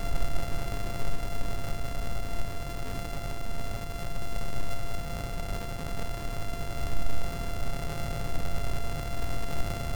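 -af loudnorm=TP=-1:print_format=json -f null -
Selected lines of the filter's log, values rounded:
"input_i" : "-36.1",
"input_tp" : "-12.4",
"input_lra" : "1.9",
"input_thresh" : "-46.1",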